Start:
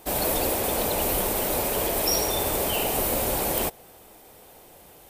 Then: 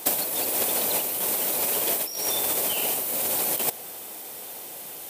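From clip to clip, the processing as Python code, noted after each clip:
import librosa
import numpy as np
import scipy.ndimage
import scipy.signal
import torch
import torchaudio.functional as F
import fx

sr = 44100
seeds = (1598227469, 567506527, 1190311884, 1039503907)

y = scipy.signal.sosfilt(scipy.signal.butter(2, 160.0, 'highpass', fs=sr, output='sos'), x)
y = fx.high_shelf(y, sr, hz=2400.0, db=10.0)
y = fx.over_compress(y, sr, threshold_db=-23.0, ratio=-0.5)
y = y * 10.0 ** (-1.0 / 20.0)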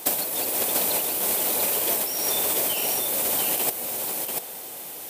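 y = x + 10.0 ** (-4.0 / 20.0) * np.pad(x, (int(689 * sr / 1000.0), 0))[:len(x)]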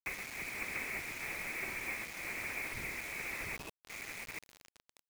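y = fx.spec_box(x, sr, start_s=3.57, length_s=0.32, low_hz=280.0, high_hz=1600.0, gain_db=-27)
y = fx.freq_invert(y, sr, carrier_hz=2800)
y = fx.quant_dither(y, sr, seeds[0], bits=6, dither='none')
y = y * 10.0 ** (-9.0 / 20.0)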